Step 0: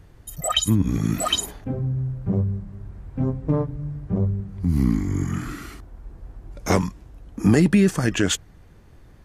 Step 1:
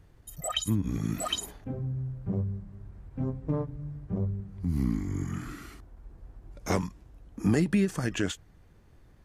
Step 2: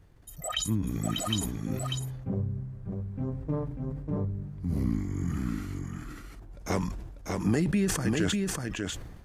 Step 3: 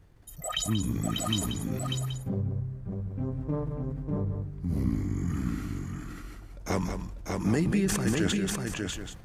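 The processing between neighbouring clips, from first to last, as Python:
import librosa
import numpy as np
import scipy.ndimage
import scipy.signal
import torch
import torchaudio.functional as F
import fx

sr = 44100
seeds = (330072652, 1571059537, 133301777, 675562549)

y1 = fx.end_taper(x, sr, db_per_s=300.0)
y1 = F.gain(torch.from_numpy(y1), -8.0).numpy()
y2 = y1 + 10.0 ** (-3.5 / 20.0) * np.pad(y1, (int(594 * sr / 1000.0), 0))[:len(y1)]
y2 = fx.sustainer(y2, sr, db_per_s=47.0)
y2 = F.gain(torch.from_numpy(y2), -2.0).numpy()
y3 = y2 + 10.0 ** (-8.0 / 20.0) * np.pad(y2, (int(184 * sr / 1000.0), 0))[:len(y2)]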